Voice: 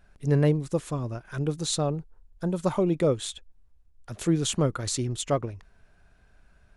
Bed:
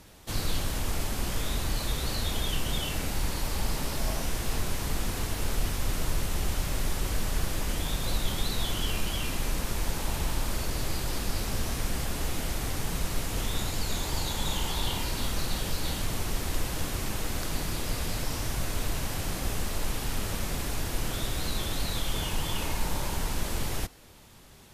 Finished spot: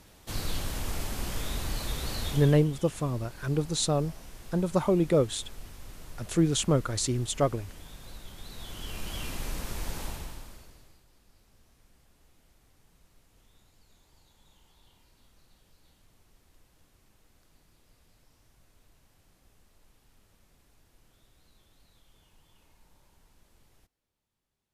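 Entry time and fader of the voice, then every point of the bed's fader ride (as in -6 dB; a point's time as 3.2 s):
2.10 s, 0.0 dB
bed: 2.29 s -3 dB
2.7 s -16.5 dB
8.34 s -16.5 dB
9.19 s -5 dB
10.04 s -5 dB
11.07 s -32.5 dB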